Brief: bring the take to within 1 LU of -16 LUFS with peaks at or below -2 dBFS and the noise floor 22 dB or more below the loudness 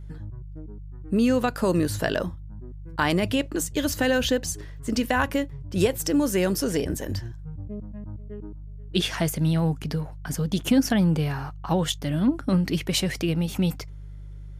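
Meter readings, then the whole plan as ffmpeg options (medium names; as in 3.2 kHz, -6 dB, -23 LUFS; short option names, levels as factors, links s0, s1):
hum 50 Hz; highest harmonic 150 Hz; hum level -36 dBFS; loudness -25.0 LUFS; peak level -8.5 dBFS; loudness target -16.0 LUFS
-> -af "bandreject=f=50:t=h:w=4,bandreject=f=100:t=h:w=4,bandreject=f=150:t=h:w=4"
-af "volume=2.82,alimiter=limit=0.794:level=0:latency=1"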